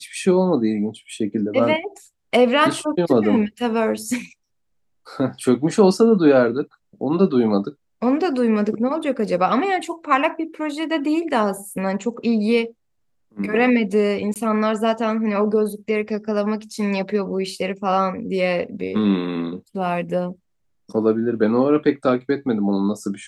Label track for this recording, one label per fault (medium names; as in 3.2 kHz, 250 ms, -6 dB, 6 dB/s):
14.340000	14.360000	dropout 18 ms